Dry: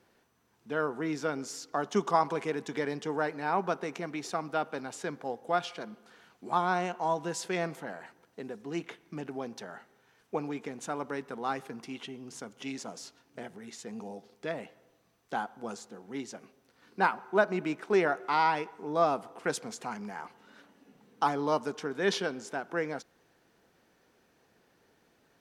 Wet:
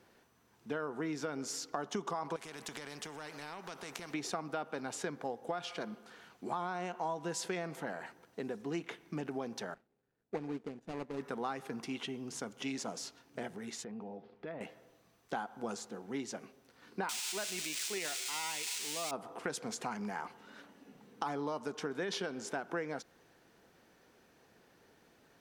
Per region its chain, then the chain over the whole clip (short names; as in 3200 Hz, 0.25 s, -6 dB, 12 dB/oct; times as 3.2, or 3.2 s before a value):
2.36–4.14 compressor 4:1, threshold -36 dBFS + spectral compressor 2:1
9.74–11.2 median filter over 41 samples + LPF 10000 Hz + upward expander, over -56 dBFS
13.84–14.61 air absorption 370 m + compressor 2.5:1, threshold -45 dBFS
17.09–19.11 switching spikes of -18 dBFS + band shelf 4200 Hz +12.5 dB 2.5 oct
whole clip: limiter -20.5 dBFS; compressor, threshold -36 dBFS; gain +2 dB